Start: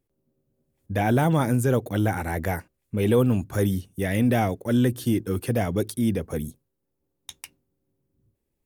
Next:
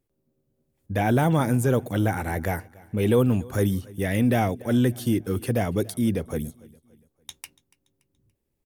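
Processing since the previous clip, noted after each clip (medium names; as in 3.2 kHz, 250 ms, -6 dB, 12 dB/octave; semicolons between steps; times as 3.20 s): feedback delay 286 ms, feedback 42%, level -23 dB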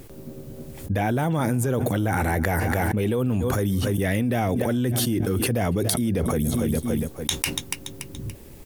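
level flattener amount 100%; trim -6 dB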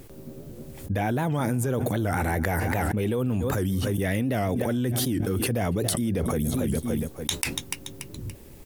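warped record 78 rpm, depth 160 cents; trim -2.5 dB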